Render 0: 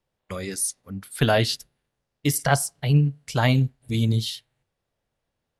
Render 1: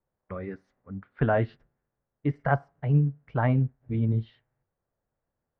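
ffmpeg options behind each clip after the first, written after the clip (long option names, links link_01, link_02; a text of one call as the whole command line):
ffmpeg -i in.wav -af "lowpass=frequency=1700:width=0.5412,lowpass=frequency=1700:width=1.3066,volume=-3.5dB" out.wav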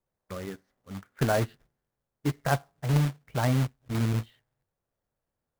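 ffmpeg -i in.wav -af "acrusher=bits=2:mode=log:mix=0:aa=0.000001,volume=-2dB" out.wav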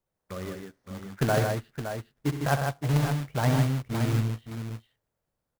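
ffmpeg -i in.wav -af "aecho=1:1:65|108|153|566:0.316|0.237|0.562|0.355" out.wav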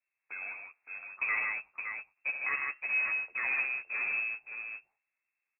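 ffmpeg -i in.wav -filter_complex "[0:a]asoftclip=type=tanh:threshold=-20dB,asplit=2[link_01][link_02];[link_02]adelay=12,volume=-6dB[link_03];[link_01][link_03]amix=inputs=2:normalize=0,lowpass=frequency=2300:width_type=q:width=0.5098,lowpass=frequency=2300:width_type=q:width=0.6013,lowpass=frequency=2300:width_type=q:width=0.9,lowpass=frequency=2300:width_type=q:width=2.563,afreqshift=-2700,volume=-5dB" out.wav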